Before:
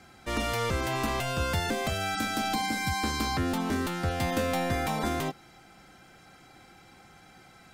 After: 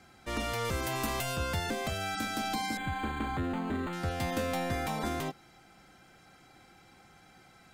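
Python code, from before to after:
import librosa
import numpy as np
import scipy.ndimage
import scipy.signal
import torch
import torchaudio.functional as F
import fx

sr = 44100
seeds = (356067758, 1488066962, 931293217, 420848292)

y = fx.high_shelf(x, sr, hz=fx.line((0.64, 10000.0), (1.35, 6200.0)), db=11.0, at=(0.64, 1.35), fade=0.02)
y = fx.resample_linear(y, sr, factor=8, at=(2.77, 3.93))
y = y * 10.0 ** (-4.0 / 20.0)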